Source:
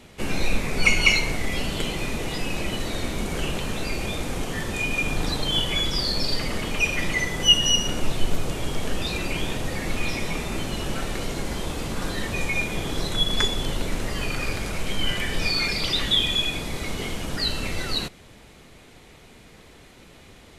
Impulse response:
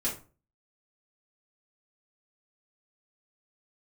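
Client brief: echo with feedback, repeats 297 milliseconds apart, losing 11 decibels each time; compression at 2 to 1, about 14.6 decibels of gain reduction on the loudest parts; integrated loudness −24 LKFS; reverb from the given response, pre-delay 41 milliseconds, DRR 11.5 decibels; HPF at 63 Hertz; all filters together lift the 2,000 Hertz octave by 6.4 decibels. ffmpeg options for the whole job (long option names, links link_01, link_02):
-filter_complex "[0:a]highpass=63,equalizer=frequency=2000:width_type=o:gain=7.5,acompressor=threshold=-36dB:ratio=2,aecho=1:1:297|594|891:0.282|0.0789|0.0221,asplit=2[link_01][link_02];[1:a]atrim=start_sample=2205,adelay=41[link_03];[link_02][link_03]afir=irnorm=-1:irlink=0,volume=-17dB[link_04];[link_01][link_04]amix=inputs=2:normalize=0,volume=6.5dB"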